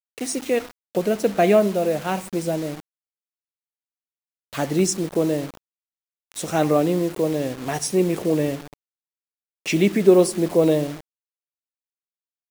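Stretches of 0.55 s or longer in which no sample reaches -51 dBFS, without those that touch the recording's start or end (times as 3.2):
2.8–4.53
5.57–6.32
8.74–9.66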